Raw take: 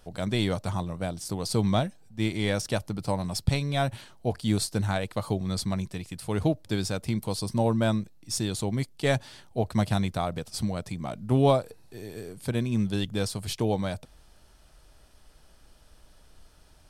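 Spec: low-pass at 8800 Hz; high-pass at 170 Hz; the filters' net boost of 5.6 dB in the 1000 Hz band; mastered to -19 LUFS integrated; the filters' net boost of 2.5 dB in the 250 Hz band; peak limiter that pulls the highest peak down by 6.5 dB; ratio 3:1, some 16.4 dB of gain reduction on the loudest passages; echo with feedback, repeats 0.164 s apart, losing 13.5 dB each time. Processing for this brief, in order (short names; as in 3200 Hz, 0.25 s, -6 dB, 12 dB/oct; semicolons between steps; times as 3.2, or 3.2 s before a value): HPF 170 Hz; LPF 8800 Hz; bell 250 Hz +4.5 dB; bell 1000 Hz +7.5 dB; compressor 3:1, threshold -36 dBFS; limiter -26 dBFS; feedback echo 0.164 s, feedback 21%, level -13.5 dB; gain +20.5 dB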